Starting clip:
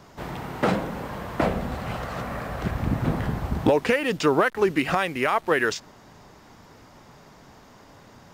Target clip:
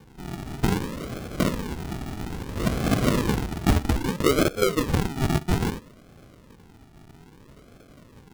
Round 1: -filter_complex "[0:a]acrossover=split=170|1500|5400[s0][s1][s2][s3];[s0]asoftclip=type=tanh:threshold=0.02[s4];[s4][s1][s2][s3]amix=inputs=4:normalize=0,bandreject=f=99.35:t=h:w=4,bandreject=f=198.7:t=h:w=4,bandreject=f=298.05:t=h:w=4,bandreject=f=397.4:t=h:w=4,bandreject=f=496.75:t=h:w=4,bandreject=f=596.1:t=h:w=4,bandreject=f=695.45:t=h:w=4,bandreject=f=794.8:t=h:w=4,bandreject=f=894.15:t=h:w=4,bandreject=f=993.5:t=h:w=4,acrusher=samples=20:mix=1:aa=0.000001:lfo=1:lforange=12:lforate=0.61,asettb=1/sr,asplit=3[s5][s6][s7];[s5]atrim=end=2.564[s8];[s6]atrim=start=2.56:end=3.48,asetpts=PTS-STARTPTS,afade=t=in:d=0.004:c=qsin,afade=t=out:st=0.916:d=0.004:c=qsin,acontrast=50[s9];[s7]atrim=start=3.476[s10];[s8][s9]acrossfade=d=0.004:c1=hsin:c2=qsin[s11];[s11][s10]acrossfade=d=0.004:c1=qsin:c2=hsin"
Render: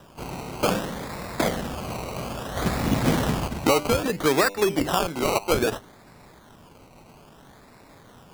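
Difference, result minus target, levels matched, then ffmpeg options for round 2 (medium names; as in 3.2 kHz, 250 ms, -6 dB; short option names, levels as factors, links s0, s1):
decimation with a swept rate: distortion -17 dB
-filter_complex "[0:a]acrossover=split=170|1500|5400[s0][s1][s2][s3];[s0]asoftclip=type=tanh:threshold=0.02[s4];[s4][s1][s2][s3]amix=inputs=4:normalize=0,bandreject=f=99.35:t=h:w=4,bandreject=f=198.7:t=h:w=4,bandreject=f=298.05:t=h:w=4,bandreject=f=397.4:t=h:w=4,bandreject=f=496.75:t=h:w=4,bandreject=f=596.1:t=h:w=4,bandreject=f=695.45:t=h:w=4,bandreject=f=794.8:t=h:w=4,bandreject=f=894.15:t=h:w=4,bandreject=f=993.5:t=h:w=4,acrusher=samples=66:mix=1:aa=0.000001:lfo=1:lforange=39.6:lforate=0.61,asettb=1/sr,asplit=3[s5][s6][s7];[s5]atrim=end=2.564[s8];[s6]atrim=start=2.56:end=3.48,asetpts=PTS-STARTPTS,afade=t=in:d=0.004:c=qsin,afade=t=out:st=0.916:d=0.004:c=qsin,acontrast=50[s9];[s7]atrim=start=3.476[s10];[s8][s9]acrossfade=d=0.004:c1=hsin:c2=qsin[s11];[s11][s10]acrossfade=d=0.004:c1=qsin:c2=hsin"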